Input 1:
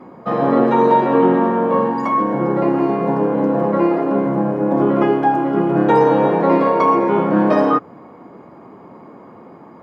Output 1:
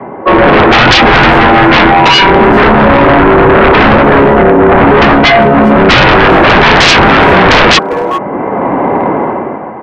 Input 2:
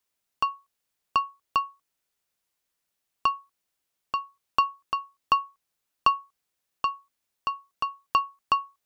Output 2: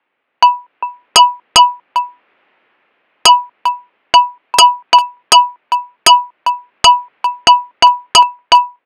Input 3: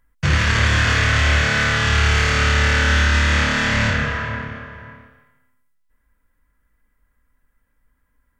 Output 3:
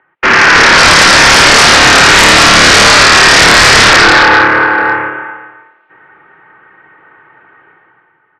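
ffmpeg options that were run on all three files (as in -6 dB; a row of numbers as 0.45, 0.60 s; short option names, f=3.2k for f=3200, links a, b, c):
-filter_complex "[0:a]dynaudnorm=f=100:g=13:m=14.5dB,highpass=f=390:t=q:w=0.5412,highpass=f=390:t=q:w=1.307,lowpass=f=2.8k:t=q:w=0.5176,lowpass=f=2.8k:t=q:w=0.7071,lowpass=f=2.8k:t=q:w=1.932,afreqshift=-130,asplit=2[a][b];[b]adelay=400,highpass=300,lowpass=3.4k,asoftclip=type=hard:threshold=-11dB,volume=-17dB[c];[a][c]amix=inputs=2:normalize=0,aeval=exprs='0.891*sin(PI/2*6.31*val(0)/0.891)':c=same"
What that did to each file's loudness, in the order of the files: +11.0, +18.5, +14.0 LU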